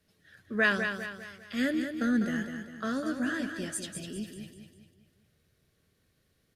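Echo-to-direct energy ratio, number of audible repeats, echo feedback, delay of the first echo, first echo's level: -6.0 dB, 4, 44%, 0.2 s, -7.0 dB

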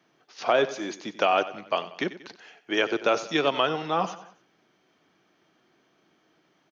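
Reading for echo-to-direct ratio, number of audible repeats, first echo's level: -14.0 dB, 3, -15.0 dB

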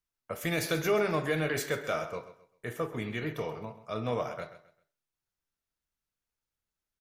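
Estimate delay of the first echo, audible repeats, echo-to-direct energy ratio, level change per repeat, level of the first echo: 0.131 s, 3, -13.5 dB, -10.5 dB, -14.0 dB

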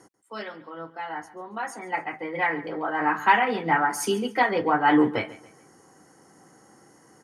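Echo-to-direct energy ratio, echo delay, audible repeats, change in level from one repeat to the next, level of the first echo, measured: -17.5 dB, 0.14 s, 2, -9.0 dB, -18.0 dB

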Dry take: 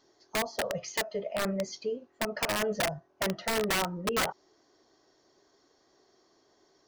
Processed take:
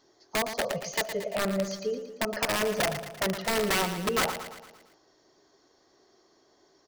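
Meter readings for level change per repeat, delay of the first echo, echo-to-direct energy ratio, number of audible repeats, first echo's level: -5.5 dB, 0.114 s, -8.5 dB, 5, -10.0 dB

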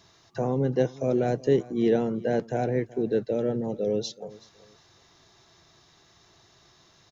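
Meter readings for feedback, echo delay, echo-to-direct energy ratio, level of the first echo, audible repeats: 23%, 0.376 s, -20.0 dB, -20.0 dB, 2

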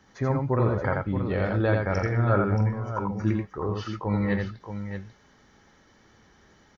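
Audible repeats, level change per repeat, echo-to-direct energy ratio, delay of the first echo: 2, no steady repeat, -2.5 dB, 85 ms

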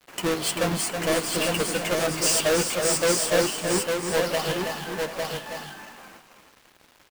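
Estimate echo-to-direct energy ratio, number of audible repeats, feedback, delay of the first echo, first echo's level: -1.5 dB, 5, no steady repeat, 0.324 s, -6.5 dB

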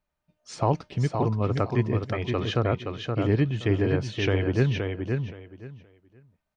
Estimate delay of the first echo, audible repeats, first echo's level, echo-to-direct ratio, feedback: 0.522 s, 3, -5.0 dB, -5.0 dB, 20%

